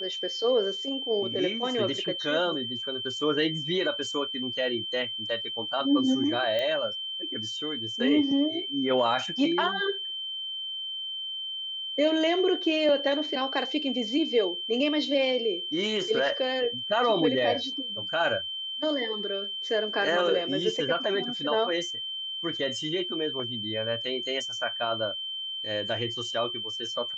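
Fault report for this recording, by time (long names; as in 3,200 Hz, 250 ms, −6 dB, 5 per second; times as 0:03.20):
whistle 3,100 Hz −32 dBFS
0:06.59: click −18 dBFS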